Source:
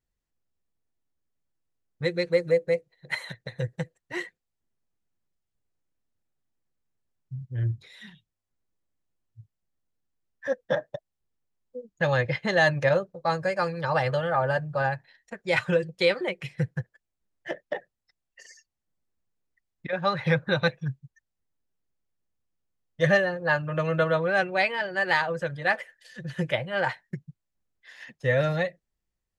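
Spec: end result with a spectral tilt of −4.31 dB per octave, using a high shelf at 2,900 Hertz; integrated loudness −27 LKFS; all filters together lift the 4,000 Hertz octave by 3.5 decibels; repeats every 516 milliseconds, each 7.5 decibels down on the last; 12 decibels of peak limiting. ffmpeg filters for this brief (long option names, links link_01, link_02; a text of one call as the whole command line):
ffmpeg -i in.wav -af "highshelf=frequency=2900:gain=-4,equalizer=frequency=4000:width_type=o:gain=7,alimiter=limit=-20.5dB:level=0:latency=1,aecho=1:1:516|1032|1548|2064|2580:0.422|0.177|0.0744|0.0312|0.0131,volume=4.5dB" out.wav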